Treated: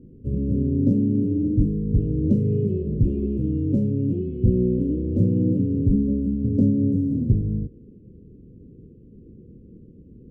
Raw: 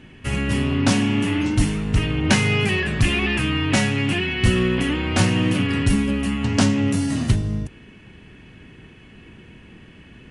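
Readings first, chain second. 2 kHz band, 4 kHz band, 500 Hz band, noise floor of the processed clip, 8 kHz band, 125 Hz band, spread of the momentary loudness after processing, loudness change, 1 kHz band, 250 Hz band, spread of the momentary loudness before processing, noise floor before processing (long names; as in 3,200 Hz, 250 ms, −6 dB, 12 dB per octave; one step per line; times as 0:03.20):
below −40 dB, below −40 dB, −1.5 dB, −48 dBFS, below −40 dB, −0.5 dB, 5 LU, −2.0 dB, below −35 dB, 0.0 dB, 4 LU, −46 dBFS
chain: elliptic low-pass filter 500 Hz, stop band 40 dB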